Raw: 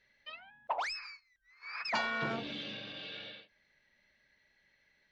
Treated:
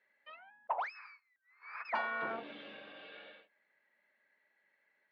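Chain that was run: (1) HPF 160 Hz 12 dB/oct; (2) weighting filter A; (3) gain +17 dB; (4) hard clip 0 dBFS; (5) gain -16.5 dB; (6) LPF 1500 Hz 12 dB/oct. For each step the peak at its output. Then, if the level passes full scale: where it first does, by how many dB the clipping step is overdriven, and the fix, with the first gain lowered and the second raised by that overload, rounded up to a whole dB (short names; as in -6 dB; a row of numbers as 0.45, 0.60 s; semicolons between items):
-22.5, -21.5, -4.5, -4.5, -21.0, -23.5 dBFS; no overload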